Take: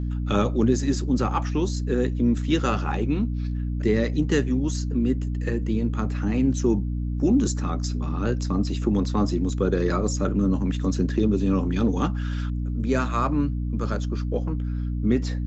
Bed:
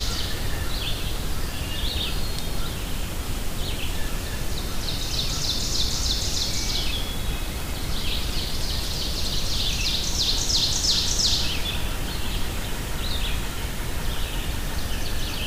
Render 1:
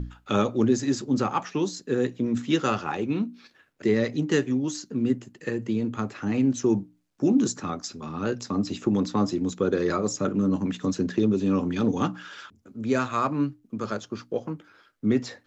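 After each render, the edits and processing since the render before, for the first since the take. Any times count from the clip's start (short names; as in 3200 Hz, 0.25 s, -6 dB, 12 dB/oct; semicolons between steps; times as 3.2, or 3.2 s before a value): notches 60/120/180/240/300 Hz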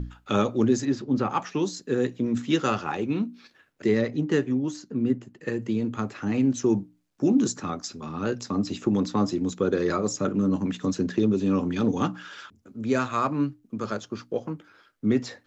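0.85–1.3 air absorption 180 m; 4.01–5.48 high shelf 3100 Hz -9.5 dB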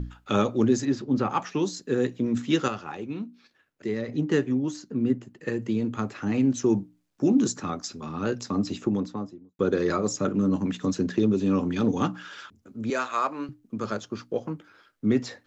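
2.68–4.08 gain -7 dB; 8.62–9.59 studio fade out; 12.9–13.49 HPF 470 Hz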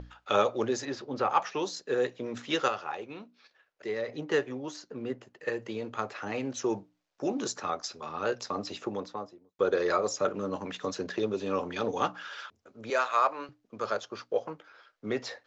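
LPF 6300 Hz 24 dB/oct; resonant low shelf 370 Hz -12.5 dB, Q 1.5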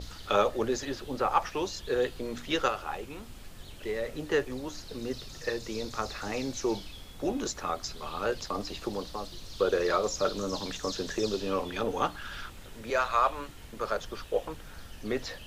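add bed -19 dB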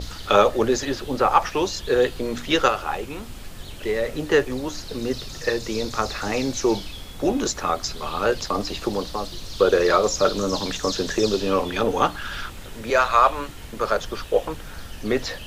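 gain +9 dB; limiter -3 dBFS, peak gain reduction 1.5 dB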